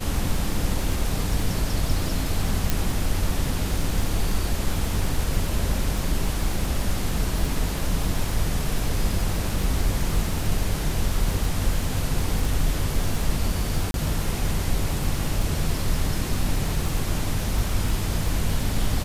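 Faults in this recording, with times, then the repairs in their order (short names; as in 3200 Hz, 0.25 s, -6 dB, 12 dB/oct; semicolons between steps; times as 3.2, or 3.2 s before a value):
crackle 57/s -27 dBFS
2.7 pop
13.91–13.94 gap 32 ms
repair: de-click; interpolate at 13.91, 32 ms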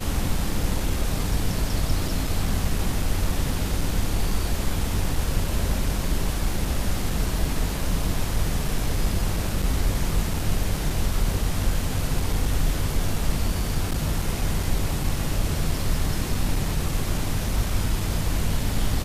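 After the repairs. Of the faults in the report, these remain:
none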